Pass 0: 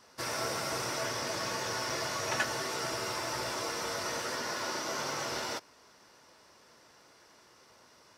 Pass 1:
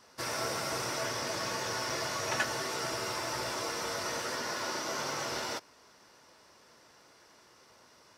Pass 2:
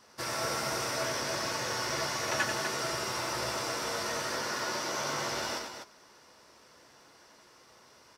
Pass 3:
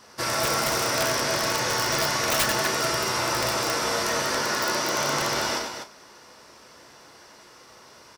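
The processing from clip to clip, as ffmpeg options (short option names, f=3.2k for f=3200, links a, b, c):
-af anull
-filter_complex "[0:a]asplit=2[a][b];[b]adelay=14,volume=-12.5dB[c];[a][c]amix=inputs=2:normalize=0,asplit=2[d][e];[e]aecho=0:1:90.38|247.8:0.501|0.398[f];[d][f]amix=inputs=2:normalize=0"
-filter_complex "[0:a]aeval=exprs='(mod(15*val(0)+1,2)-1)/15':c=same,asplit=2[a][b];[b]adelay=34,volume=-11dB[c];[a][c]amix=inputs=2:normalize=0,volume=8dB"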